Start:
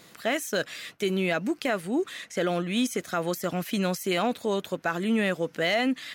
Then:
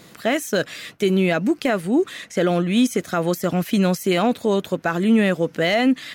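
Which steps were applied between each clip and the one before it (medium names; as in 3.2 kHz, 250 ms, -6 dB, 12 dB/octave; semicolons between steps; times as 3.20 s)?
bass shelf 470 Hz +6.5 dB; trim +4 dB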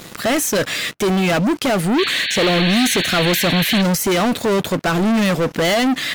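waveshaping leveller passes 5; painted sound noise, 1.98–3.82 s, 1.5–4.5 kHz -17 dBFS; trim -5 dB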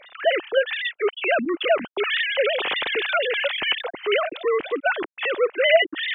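formants replaced by sine waves; treble shelf 2.1 kHz +9.5 dB; trim -7.5 dB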